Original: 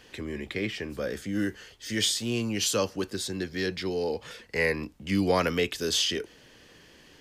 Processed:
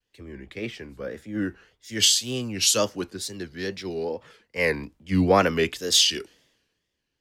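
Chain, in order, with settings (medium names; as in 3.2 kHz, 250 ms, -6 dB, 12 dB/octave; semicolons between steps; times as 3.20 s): wow and flutter 130 cents; three bands expanded up and down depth 100%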